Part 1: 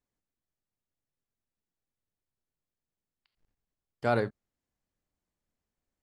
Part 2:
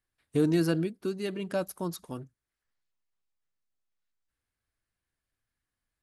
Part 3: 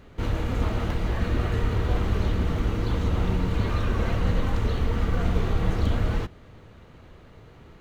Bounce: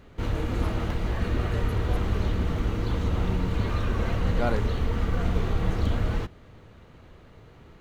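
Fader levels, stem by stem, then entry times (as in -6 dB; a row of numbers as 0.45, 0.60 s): -1.5, -14.0, -1.5 dB; 0.35, 0.00, 0.00 s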